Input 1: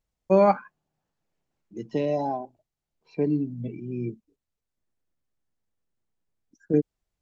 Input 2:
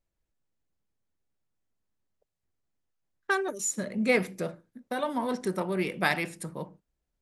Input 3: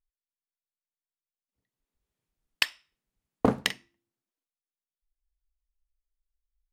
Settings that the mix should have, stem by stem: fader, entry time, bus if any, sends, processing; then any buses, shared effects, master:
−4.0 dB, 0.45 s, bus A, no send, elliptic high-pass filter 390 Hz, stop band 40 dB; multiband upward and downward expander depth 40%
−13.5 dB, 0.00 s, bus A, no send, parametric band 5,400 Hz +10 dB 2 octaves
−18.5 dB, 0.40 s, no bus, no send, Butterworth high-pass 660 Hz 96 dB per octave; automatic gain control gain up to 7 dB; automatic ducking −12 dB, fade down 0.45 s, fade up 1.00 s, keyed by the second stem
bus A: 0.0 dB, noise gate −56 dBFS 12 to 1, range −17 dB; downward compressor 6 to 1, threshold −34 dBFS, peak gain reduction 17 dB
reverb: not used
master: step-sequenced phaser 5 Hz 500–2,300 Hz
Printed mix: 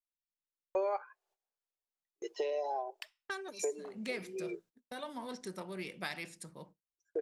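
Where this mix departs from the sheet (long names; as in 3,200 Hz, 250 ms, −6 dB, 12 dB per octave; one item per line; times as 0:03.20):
stem 1 −4.0 dB → +7.0 dB
master: missing step-sequenced phaser 5 Hz 500–2,300 Hz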